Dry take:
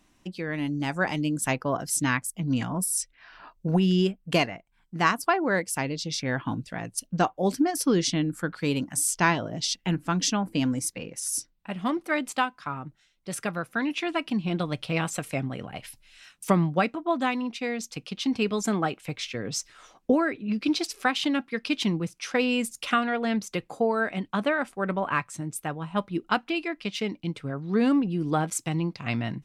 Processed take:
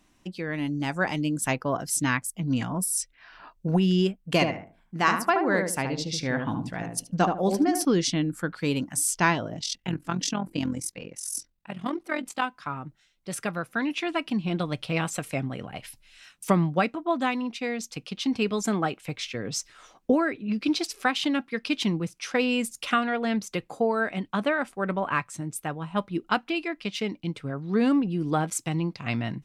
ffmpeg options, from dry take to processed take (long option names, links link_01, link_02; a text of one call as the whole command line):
ffmpeg -i in.wav -filter_complex "[0:a]asettb=1/sr,asplit=3[link_01][link_02][link_03];[link_01]atrim=end=4.324[link_04];[link_02]atrim=start=4.32:end=7.85,asetpts=PTS-STARTPTS,afade=type=in:duration=0.004:curve=qsin,afade=type=out:start_time=3.526:duration=0.004:curve=qsin,asplit=2[link_05][link_06];[link_06]adelay=75,lowpass=frequency=1000:poles=1,volume=-3dB,asplit=2[link_07][link_08];[link_08]adelay=75,lowpass=frequency=1000:poles=1,volume=0.29,asplit=2[link_09][link_10];[link_10]adelay=75,lowpass=frequency=1000:poles=1,volume=0.29,asplit=2[link_11][link_12];[link_12]adelay=75,lowpass=frequency=1000:poles=1,volume=0.29[link_13];[link_05][link_07][link_09][link_11][link_13]amix=inputs=5:normalize=0,atrim=end_sample=155673[link_14];[link_03]atrim=start=7.846[link_15];[link_04][link_14]acrossfade=duration=0.004:curve1=hsin:curve2=qsin[link_16];[link_16][link_15]acrossfade=duration=0.004:curve1=qsin:curve2=hsin,asplit=3[link_17][link_18][link_19];[link_17]afade=type=out:start_time=9.53:duration=0.02[link_20];[link_18]tremolo=f=43:d=0.75,afade=type=in:start_time=9.53:duration=0.02,afade=type=out:start_time=12.42:duration=0.02[link_21];[link_19]afade=type=in:start_time=12.42:duration=0.02[link_22];[link_20][link_21][link_22]amix=inputs=3:normalize=0" out.wav